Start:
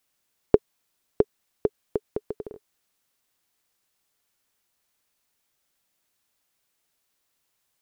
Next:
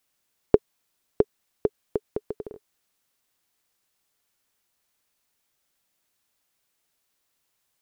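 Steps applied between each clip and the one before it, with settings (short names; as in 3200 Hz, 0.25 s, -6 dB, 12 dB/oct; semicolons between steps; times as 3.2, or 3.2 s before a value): nothing audible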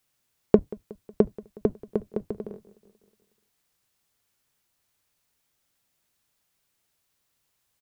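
octaver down 1 oct, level +2 dB; feedback echo 0.183 s, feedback 58%, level -21 dB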